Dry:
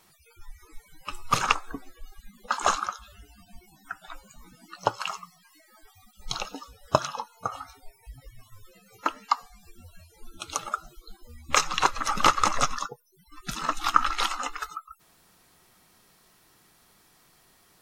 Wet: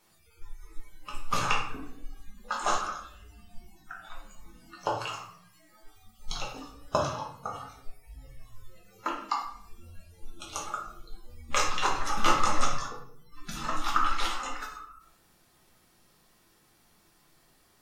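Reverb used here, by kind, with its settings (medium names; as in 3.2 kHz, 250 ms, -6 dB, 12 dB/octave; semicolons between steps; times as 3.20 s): simulated room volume 120 m³, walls mixed, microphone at 1.3 m; trim -8.5 dB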